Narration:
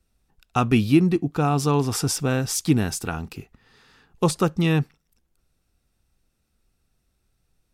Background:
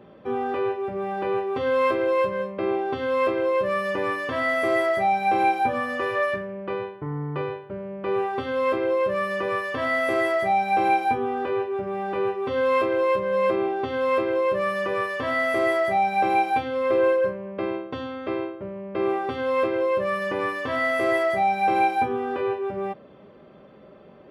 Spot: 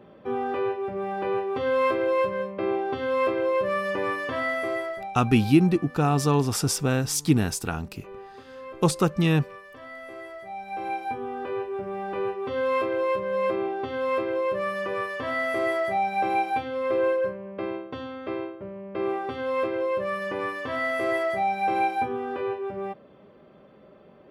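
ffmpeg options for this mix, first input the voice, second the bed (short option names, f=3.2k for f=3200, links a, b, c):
-filter_complex "[0:a]adelay=4600,volume=-1dB[a];[1:a]volume=12.5dB,afade=t=out:st=4.27:d=0.87:silence=0.158489,afade=t=in:st=10.46:d=1.33:silence=0.199526[b];[a][b]amix=inputs=2:normalize=0"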